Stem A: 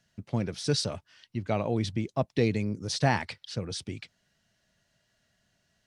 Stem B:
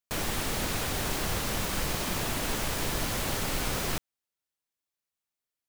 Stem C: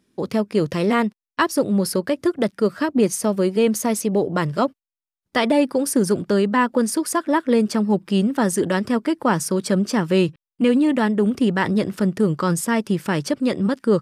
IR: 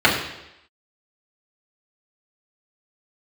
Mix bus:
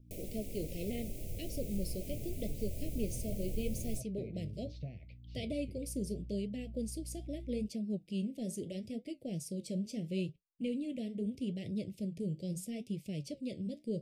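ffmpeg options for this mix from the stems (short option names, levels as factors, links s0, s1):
-filter_complex "[0:a]lowpass=2100,adelay=1800,volume=0.355[s0];[1:a]equalizer=f=3800:t=o:w=2:g=-14,volume=1.19[s1];[2:a]volume=0.178[s2];[s0][s1]amix=inputs=2:normalize=0,aeval=exprs='val(0)+0.00316*(sin(2*PI*60*n/s)+sin(2*PI*2*60*n/s)/2+sin(2*PI*3*60*n/s)/3+sin(2*PI*4*60*n/s)/4+sin(2*PI*5*60*n/s)/5)':c=same,acompressor=threshold=0.00562:ratio=2,volume=1[s3];[s2][s3]amix=inputs=2:normalize=0,asubboost=boost=3.5:cutoff=150,flanger=delay=8:depth=9.6:regen=-63:speed=0.77:shape=triangular,asuperstop=centerf=1200:order=12:qfactor=0.77"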